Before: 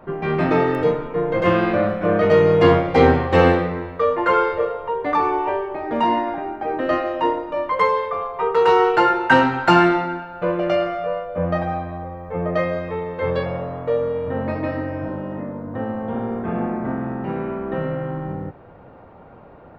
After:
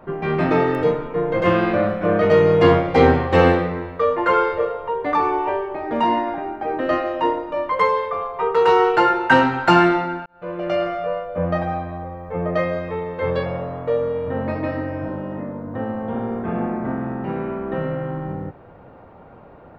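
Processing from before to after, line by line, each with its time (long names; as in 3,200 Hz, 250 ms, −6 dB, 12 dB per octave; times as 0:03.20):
0:10.26–0:10.87: fade in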